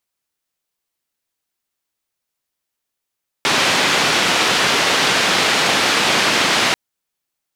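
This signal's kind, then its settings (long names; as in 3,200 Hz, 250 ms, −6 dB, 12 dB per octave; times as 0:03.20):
band-limited noise 160–3,700 Hz, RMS −16 dBFS 3.29 s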